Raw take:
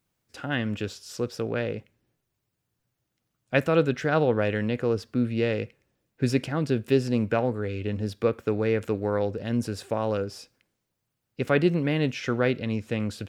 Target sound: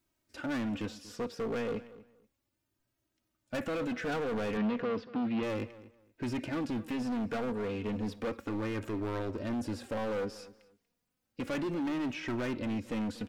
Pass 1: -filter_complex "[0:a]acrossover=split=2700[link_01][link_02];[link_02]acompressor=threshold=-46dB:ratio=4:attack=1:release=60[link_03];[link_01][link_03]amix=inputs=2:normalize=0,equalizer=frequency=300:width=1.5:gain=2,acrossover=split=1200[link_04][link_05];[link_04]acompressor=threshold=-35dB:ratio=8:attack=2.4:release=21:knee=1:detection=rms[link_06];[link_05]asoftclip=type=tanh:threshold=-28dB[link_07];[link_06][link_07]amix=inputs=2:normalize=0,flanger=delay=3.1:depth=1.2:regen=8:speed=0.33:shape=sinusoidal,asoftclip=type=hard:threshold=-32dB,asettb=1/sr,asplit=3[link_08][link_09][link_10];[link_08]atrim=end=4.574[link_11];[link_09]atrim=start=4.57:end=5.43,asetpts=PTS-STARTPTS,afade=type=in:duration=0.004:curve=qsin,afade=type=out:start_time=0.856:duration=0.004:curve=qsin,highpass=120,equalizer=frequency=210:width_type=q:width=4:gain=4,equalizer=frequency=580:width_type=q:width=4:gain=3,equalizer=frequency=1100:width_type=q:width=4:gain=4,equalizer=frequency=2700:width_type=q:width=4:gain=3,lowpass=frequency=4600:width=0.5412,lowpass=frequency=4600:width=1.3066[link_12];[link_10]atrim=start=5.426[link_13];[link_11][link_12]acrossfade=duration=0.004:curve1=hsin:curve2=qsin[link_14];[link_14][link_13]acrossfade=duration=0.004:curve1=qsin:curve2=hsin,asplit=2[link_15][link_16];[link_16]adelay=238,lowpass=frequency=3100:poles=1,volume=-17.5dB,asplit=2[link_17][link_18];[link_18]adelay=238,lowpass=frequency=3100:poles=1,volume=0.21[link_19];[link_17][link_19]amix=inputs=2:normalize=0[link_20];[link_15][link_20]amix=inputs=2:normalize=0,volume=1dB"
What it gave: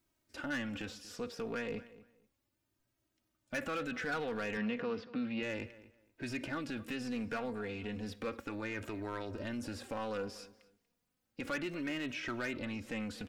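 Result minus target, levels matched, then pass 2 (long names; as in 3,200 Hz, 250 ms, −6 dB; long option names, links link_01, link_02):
downward compressor: peak gain reduction +10 dB
-filter_complex "[0:a]acrossover=split=2700[link_01][link_02];[link_02]acompressor=threshold=-46dB:ratio=4:attack=1:release=60[link_03];[link_01][link_03]amix=inputs=2:normalize=0,equalizer=frequency=300:width=1.5:gain=2,acrossover=split=1200[link_04][link_05];[link_04]acompressor=threshold=-23.5dB:ratio=8:attack=2.4:release=21:knee=1:detection=rms[link_06];[link_05]asoftclip=type=tanh:threshold=-28dB[link_07];[link_06][link_07]amix=inputs=2:normalize=0,flanger=delay=3.1:depth=1.2:regen=8:speed=0.33:shape=sinusoidal,asoftclip=type=hard:threshold=-32dB,asettb=1/sr,asplit=3[link_08][link_09][link_10];[link_08]atrim=end=4.574[link_11];[link_09]atrim=start=4.57:end=5.43,asetpts=PTS-STARTPTS,afade=type=in:duration=0.004:curve=qsin,afade=type=out:start_time=0.856:duration=0.004:curve=qsin,highpass=120,equalizer=frequency=210:width_type=q:width=4:gain=4,equalizer=frequency=580:width_type=q:width=4:gain=3,equalizer=frequency=1100:width_type=q:width=4:gain=4,equalizer=frequency=2700:width_type=q:width=4:gain=3,lowpass=frequency=4600:width=0.5412,lowpass=frequency=4600:width=1.3066[link_12];[link_10]atrim=start=5.426[link_13];[link_11][link_12]acrossfade=duration=0.004:curve1=hsin:curve2=qsin[link_14];[link_14][link_13]acrossfade=duration=0.004:curve1=qsin:curve2=hsin,asplit=2[link_15][link_16];[link_16]adelay=238,lowpass=frequency=3100:poles=1,volume=-17.5dB,asplit=2[link_17][link_18];[link_18]adelay=238,lowpass=frequency=3100:poles=1,volume=0.21[link_19];[link_17][link_19]amix=inputs=2:normalize=0[link_20];[link_15][link_20]amix=inputs=2:normalize=0,volume=1dB"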